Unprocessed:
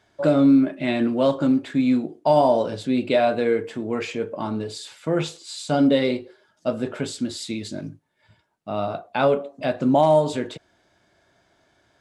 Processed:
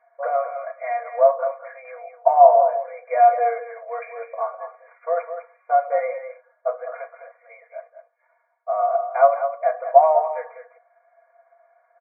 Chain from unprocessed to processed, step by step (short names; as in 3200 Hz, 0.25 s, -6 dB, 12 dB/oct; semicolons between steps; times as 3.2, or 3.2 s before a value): brick-wall FIR band-pass 470–2400 Hz; comb 4.2 ms, depth 93%; small resonant body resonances 680/1100 Hz, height 16 dB, ringing for 40 ms; on a send: echo 0.204 s -9.5 dB; on the sum: gain -7 dB